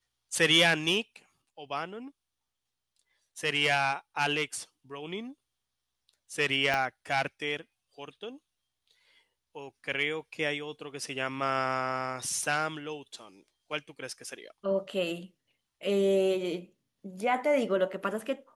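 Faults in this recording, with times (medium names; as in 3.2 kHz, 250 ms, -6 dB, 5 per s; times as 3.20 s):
6.74 s: pop -15 dBFS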